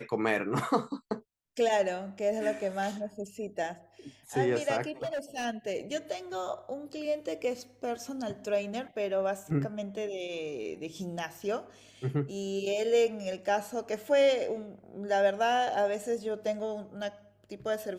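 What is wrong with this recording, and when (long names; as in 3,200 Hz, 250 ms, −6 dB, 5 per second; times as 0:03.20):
0:05.02–0:05.46: clipping −30 dBFS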